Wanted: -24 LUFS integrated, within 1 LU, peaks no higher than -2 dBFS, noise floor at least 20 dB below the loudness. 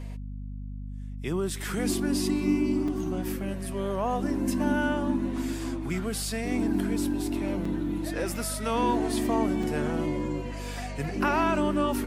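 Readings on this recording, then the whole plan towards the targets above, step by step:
dropouts 3; longest dropout 3.7 ms; hum 50 Hz; highest harmonic 250 Hz; hum level -34 dBFS; loudness -28.5 LUFS; peak level -12.0 dBFS; loudness target -24.0 LUFS
-> interpolate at 2.88/7.65/9.63 s, 3.7 ms; hum notches 50/100/150/200/250 Hz; trim +4.5 dB

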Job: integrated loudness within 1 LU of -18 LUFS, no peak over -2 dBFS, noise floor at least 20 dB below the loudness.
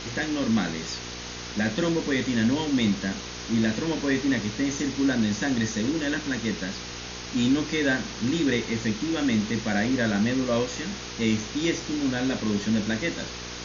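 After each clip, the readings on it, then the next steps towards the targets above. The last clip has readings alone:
hum 60 Hz; highest harmonic 480 Hz; hum level -40 dBFS; noise floor -37 dBFS; noise floor target -47 dBFS; loudness -26.5 LUFS; peak level -12.0 dBFS; loudness target -18.0 LUFS
-> de-hum 60 Hz, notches 8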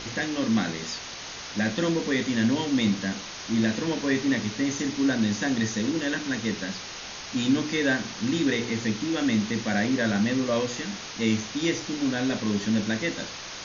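hum not found; noise floor -39 dBFS; noise floor target -47 dBFS
-> noise reduction 8 dB, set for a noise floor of -39 dBFS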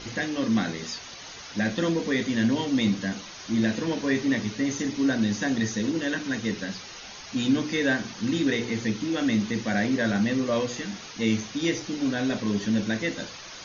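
noise floor -42 dBFS; noise floor target -47 dBFS
-> noise reduction 6 dB, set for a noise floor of -42 dBFS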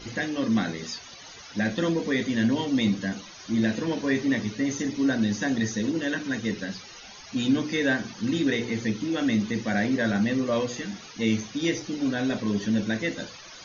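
noise floor -45 dBFS; noise floor target -47 dBFS
-> noise reduction 6 dB, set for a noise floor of -45 dBFS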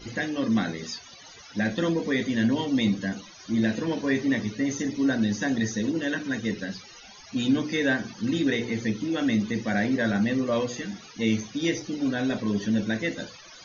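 noise floor -48 dBFS; loudness -27.0 LUFS; peak level -12.5 dBFS; loudness target -18.0 LUFS
-> trim +9 dB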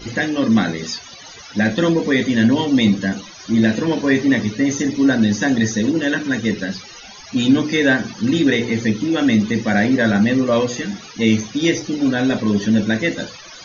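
loudness -18.0 LUFS; peak level -3.5 dBFS; noise floor -39 dBFS

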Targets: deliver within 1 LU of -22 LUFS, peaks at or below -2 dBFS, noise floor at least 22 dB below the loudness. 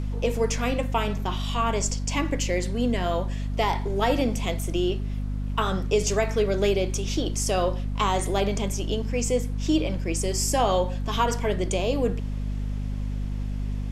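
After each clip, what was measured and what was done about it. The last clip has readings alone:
hum 50 Hz; highest harmonic 250 Hz; hum level -26 dBFS; noise floor -30 dBFS; noise floor target -48 dBFS; loudness -26.0 LUFS; peak level -9.5 dBFS; loudness target -22.0 LUFS
-> hum notches 50/100/150/200/250 Hz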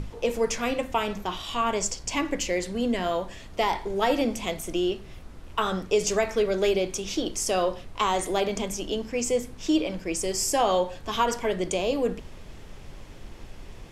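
hum not found; noise floor -44 dBFS; noise floor target -49 dBFS
-> noise print and reduce 6 dB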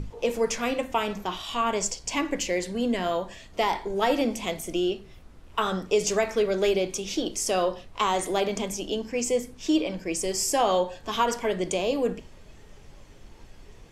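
noise floor -49 dBFS; loudness -27.0 LUFS; peak level -10.5 dBFS; loudness target -22.0 LUFS
-> trim +5 dB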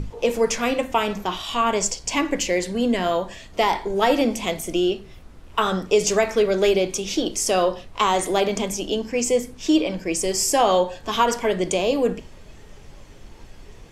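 loudness -22.0 LUFS; peak level -5.5 dBFS; noise floor -44 dBFS

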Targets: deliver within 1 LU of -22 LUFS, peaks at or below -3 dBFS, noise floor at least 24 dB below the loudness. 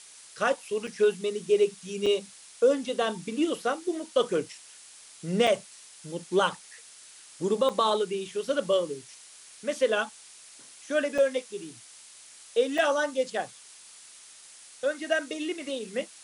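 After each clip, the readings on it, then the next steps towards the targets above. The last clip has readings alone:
dropouts 6; longest dropout 4.5 ms; noise floor -51 dBFS; noise floor target -52 dBFS; loudness -28.0 LUFS; peak level -11.5 dBFS; loudness target -22.0 LUFS
-> interpolate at 0.87/2.06/5.47/7.69/11.18/12.78 s, 4.5 ms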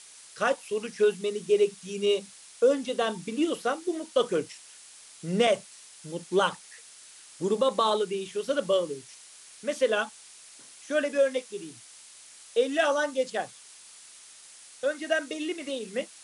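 dropouts 0; noise floor -51 dBFS; noise floor target -52 dBFS
-> noise print and reduce 6 dB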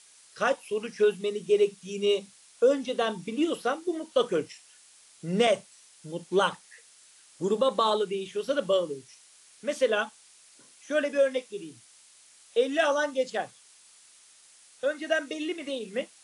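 noise floor -57 dBFS; loudness -28.0 LUFS; peak level -11.5 dBFS; loudness target -22.0 LUFS
-> trim +6 dB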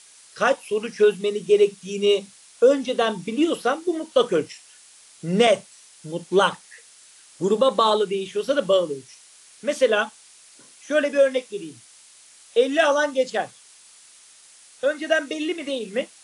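loudness -22.0 LUFS; peak level -5.5 dBFS; noise floor -51 dBFS

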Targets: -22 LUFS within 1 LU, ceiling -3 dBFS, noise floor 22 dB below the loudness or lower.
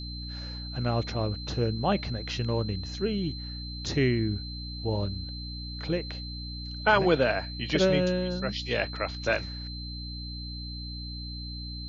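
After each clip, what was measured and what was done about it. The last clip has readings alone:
hum 60 Hz; highest harmonic 300 Hz; hum level -36 dBFS; steady tone 4.1 kHz; tone level -40 dBFS; loudness -30.0 LUFS; peak level -7.5 dBFS; loudness target -22.0 LUFS
-> hum notches 60/120/180/240/300 Hz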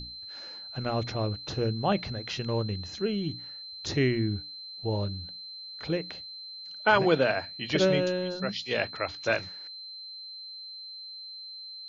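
hum not found; steady tone 4.1 kHz; tone level -40 dBFS
-> band-stop 4.1 kHz, Q 30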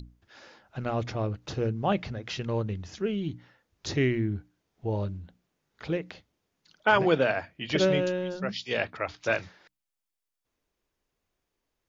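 steady tone not found; loudness -29.5 LUFS; peak level -8.5 dBFS; loudness target -22.0 LUFS
-> trim +7.5 dB; peak limiter -3 dBFS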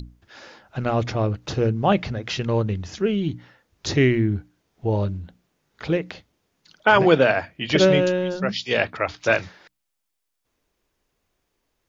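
loudness -22.0 LUFS; peak level -3.0 dBFS; noise floor -78 dBFS

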